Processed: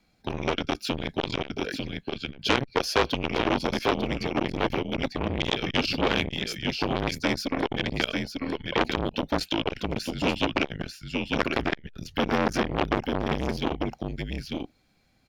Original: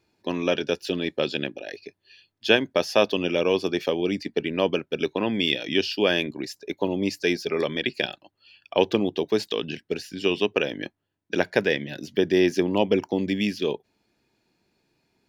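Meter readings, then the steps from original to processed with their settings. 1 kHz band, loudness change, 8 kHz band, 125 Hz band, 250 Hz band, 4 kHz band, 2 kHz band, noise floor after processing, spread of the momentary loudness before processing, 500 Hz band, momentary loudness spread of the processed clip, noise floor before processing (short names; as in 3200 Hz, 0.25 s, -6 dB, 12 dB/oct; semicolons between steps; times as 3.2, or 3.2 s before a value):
+4.0 dB, -3.0 dB, +1.5 dB, +3.0 dB, -2.0 dB, -1.5 dB, -1.0 dB, -65 dBFS, 10 LU, -5.5 dB, 8 LU, -75 dBFS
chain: echo 0.896 s -6 dB; frequency shift -140 Hz; core saturation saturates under 2600 Hz; gain +3 dB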